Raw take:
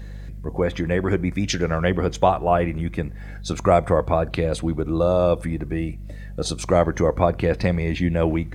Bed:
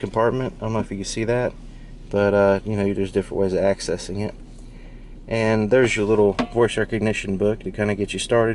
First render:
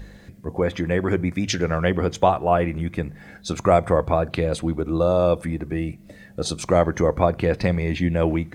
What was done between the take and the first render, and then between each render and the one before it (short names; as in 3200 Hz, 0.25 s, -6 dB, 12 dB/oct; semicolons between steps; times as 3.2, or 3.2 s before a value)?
de-hum 50 Hz, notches 3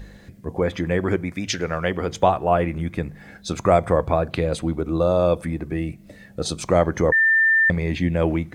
1.16–2.09 low shelf 370 Hz -6 dB; 7.12–7.7 bleep 1790 Hz -13.5 dBFS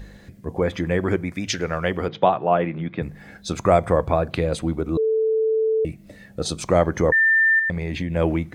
2.08–3.02 elliptic band-pass 130–3800 Hz; 4.97–5.85 bleep 441 Hz -17 dBFS; 7.59–8.16 compressor, threshold -21 dBFS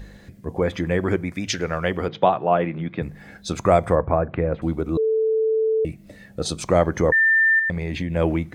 3.95–4.62 LPF 2000 Hz 24 dB/oct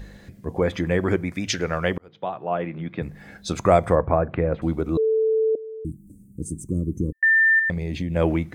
1.98–3.71 fade in equal-power; 5.55–7.23 elliptic band-stop 310–8400 Hz; 7.74–8.16 bell 1400 Hz -10 dB 1.8 oct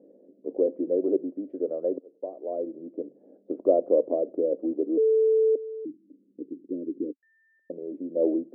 Chebyshev band-pass 270–590 Hz, order 3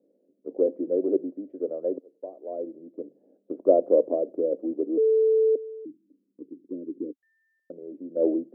three-band expander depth 40%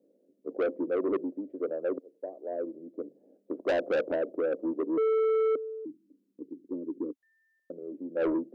soft clip -23 dBFS, distortion -9 dB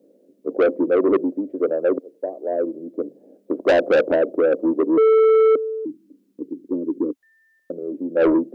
gain +11.5 dB